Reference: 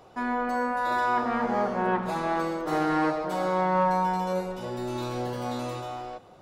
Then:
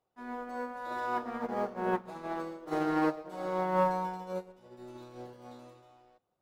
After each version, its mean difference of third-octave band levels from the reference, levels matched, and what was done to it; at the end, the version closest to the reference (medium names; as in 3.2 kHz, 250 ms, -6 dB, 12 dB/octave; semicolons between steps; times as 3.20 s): 7.0 dB: companding laws mixed up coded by A; dynamic bell 390 Hz, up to +5 dB, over -41 dBFS, Q 1; upward expansion 2.5:1, over -33 dBFS; trim -3.5 dB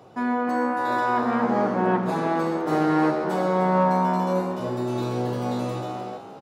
3.0 dB: high-pass 97 Hz 24 dB/octave; bass shelf 470 Hz +8 dB; frequency-shifting echo 304 ms, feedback 40%, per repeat +71 Hz, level -11 dB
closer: second